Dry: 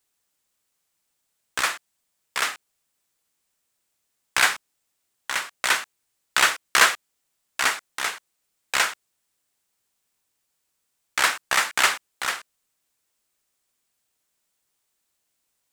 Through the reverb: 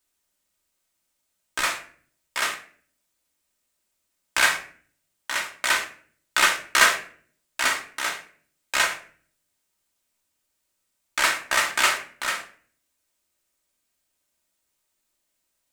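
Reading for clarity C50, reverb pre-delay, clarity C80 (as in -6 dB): 10.0 dB, 3 ms, 14.5 dB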